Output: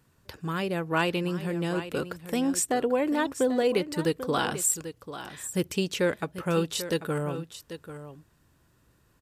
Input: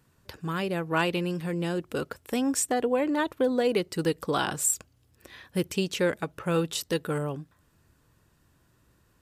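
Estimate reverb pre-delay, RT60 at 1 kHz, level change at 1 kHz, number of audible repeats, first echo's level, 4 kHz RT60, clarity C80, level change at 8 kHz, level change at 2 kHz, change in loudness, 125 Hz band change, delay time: no reverb audible, no reverb audible, 0.0 dB, 1, −12.0 dB, no reverb audible, no reverb audible, +0.5 dB, +0.5 dB, 0.0 dB, 0.0 dB, 791 ms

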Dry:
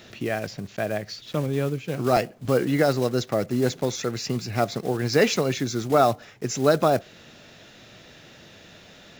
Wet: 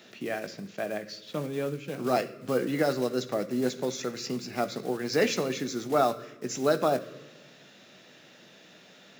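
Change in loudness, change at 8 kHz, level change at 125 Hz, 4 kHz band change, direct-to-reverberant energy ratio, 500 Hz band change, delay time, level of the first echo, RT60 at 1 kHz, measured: −5.5 dB, −5.0 dB, −11.5 dB, −5.0 dB, 9.0 dB, −5.0 dB, no echo audible, no echo audible, 1.0 s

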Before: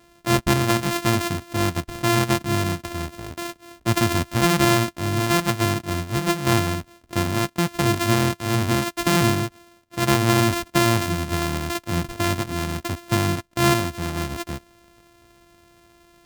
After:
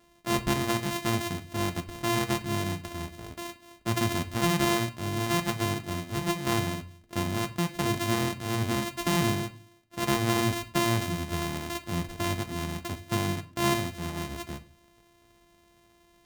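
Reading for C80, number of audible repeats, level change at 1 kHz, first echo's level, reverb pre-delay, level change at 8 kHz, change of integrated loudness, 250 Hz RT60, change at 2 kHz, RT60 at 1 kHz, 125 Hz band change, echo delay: 21.0 dB, no echo audible, −7.0 dB, no echo audible, 5 ms, −7.0 dB, −7.5 dB, 0.65 s, −7.5 dB, 0.35 s, −8.0 dB, no echo audible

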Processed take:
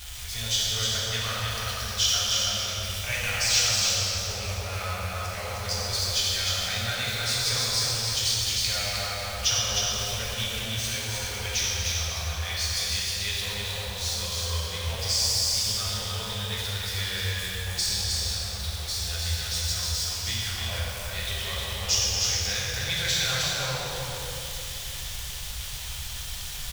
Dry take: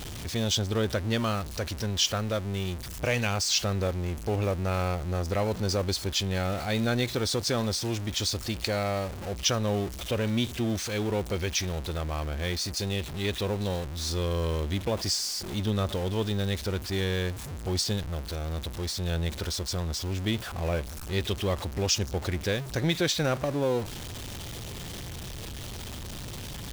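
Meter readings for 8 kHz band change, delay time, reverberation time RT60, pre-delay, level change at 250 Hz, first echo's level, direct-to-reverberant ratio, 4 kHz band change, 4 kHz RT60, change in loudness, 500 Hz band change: +8.0 dB, 310 ms, 2.9 s, 3 ms, −13.0 dB, −3.0 dB, −8.5 dB, +7.0 dB, 2.4 s, +3.0 dB, −8.0 dB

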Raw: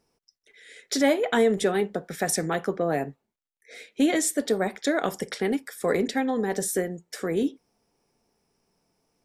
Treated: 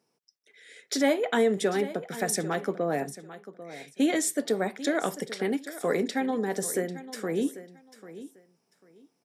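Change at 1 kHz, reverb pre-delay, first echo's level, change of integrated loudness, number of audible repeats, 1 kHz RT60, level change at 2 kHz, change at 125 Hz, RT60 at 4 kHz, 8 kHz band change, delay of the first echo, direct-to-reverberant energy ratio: −2.5 dB, no reverb audible, −15.0 dB, −2.5 dB, 2, no reverb audible, −2.5 dB, −3.0 dB, no reverb audible, −2.5 dB, 794 ms, no reverb audible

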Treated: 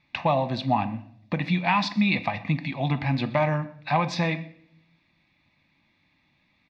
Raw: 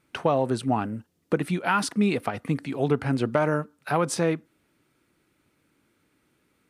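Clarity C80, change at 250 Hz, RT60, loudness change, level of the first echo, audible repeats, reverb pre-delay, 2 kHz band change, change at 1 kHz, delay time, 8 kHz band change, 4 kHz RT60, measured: 17.5 dB, −0.5 dB, 0.65 s, +0.5 dB, −23.0 dB, 1, 5 ms, +2.5 dB, +2.5 dB, 124 ms, −11.5 dB, 0.50 s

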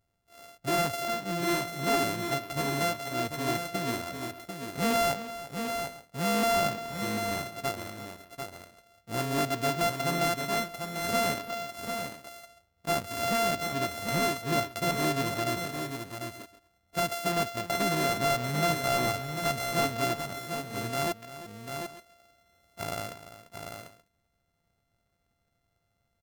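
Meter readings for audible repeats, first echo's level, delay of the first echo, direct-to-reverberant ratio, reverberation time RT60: 3, −14.0 dB, 344 ms, no reverb audible, no reverb audible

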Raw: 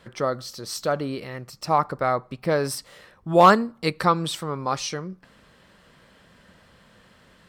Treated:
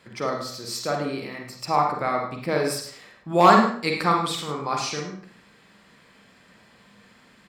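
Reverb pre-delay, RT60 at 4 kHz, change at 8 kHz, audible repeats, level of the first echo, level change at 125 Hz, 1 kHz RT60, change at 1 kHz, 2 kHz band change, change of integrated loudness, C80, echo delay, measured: 38 ms, 0.45 s, +0.5 dB, 1, −11.5 dB, −2.0 dB, 0.50 s, +0.5 dB, +1.5 dB, 0.0 dB, 7.5 dB, 104 ms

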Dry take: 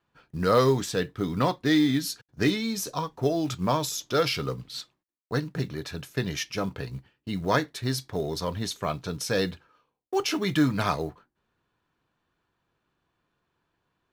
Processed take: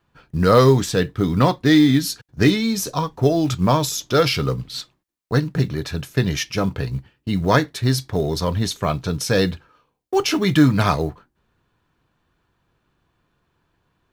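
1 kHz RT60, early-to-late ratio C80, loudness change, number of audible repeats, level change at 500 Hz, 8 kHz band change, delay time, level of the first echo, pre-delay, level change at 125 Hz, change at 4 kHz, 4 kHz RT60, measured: no reverb audible, no reverb audible, +8.0 dB, no echo audible, +7.0 dB, +6.5 dB, no echo audible, no echo audible, no reverb audible, +11.0 dB, +6.5 dB, no reverb audible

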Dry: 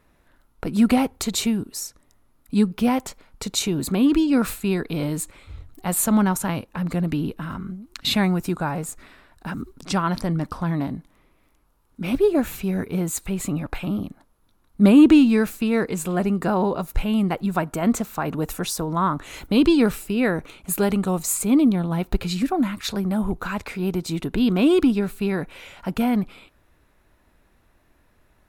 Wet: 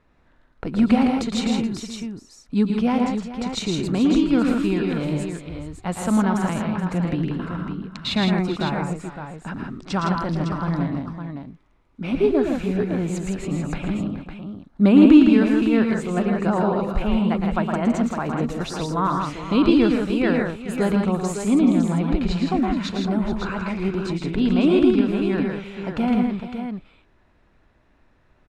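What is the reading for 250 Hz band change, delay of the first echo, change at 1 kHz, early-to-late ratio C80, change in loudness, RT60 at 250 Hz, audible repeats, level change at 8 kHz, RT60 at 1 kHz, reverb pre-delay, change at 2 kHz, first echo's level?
+1.5 dB, 112 ms, +1.0 dB, no reverb audible, +1.0 dB, no reverb audible, 4, can't be measured, no reverb audible, no reverb audible, +0.5 dB, −6.5 dB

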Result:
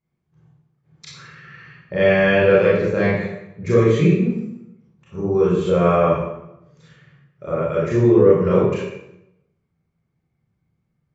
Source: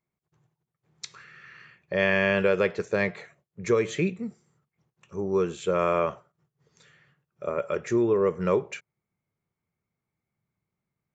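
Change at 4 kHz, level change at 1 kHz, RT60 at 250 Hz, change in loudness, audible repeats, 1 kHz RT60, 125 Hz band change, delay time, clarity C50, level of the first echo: +5.0 dB, +6.5 dB, 0.95 s, +8.5 dB, no echo audible, 0.85 s, +14.0 dB, no echo audible, −1.0 dB, no echo audible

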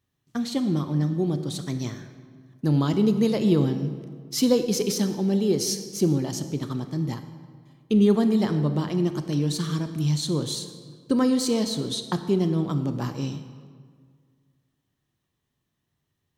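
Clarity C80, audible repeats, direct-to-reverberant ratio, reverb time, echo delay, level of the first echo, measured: 11.0 dB, no echo audible, 8.5 dB, 1.9 s, no echo audible, no echo audible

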